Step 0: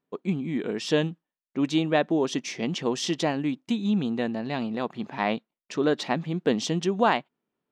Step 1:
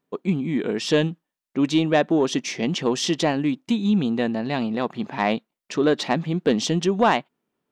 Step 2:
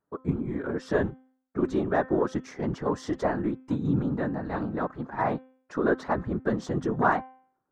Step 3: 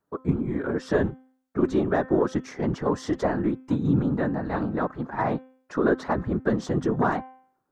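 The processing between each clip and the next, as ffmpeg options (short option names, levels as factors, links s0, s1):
-af "asoftclip=type=tanh:threshold=0.224,volume=1.78"
-af "highshelf=f=2000:t=q:w=3:g=-11,afftfilt=real='hypot(re,im)*cos(2*PI*random(0))':imag='hypot(re,im)*sin(2*PI*random(1))':win_size=512:overlap=0.75,bandreject=f=259.3:t=h:w=4,bandreject=f=518.6:t=h:w=4,bandreject=f=777.9:t=h:w=4,bandreject=f=1037.2:t=h:w=4,bandreject=f=1296.5:t=h:w=4,bandreject=f=1555.8:t=h:w=4,bandreject=f=1815.1:t=h:w=4,bandreject=f=2074.4:t=h:w=4,bandreject=f=2333.7:t=h:w=4,bandreject=f=2593:t=h:w=4,bandreject=f=2852.3:t=h:w=4,bandreject=f=3111.6:t=h:w=4,bandreject=f=3370.9:t=h:w=4"
-filter_complex "[0:a]acrossover=split=450|3000[s0][s1][s2];[s1]acompressor=threshold=0.0447:ratio=6[s3];[s0][s3][s2]amix=inputs=3:normalize=0,volume=1.5"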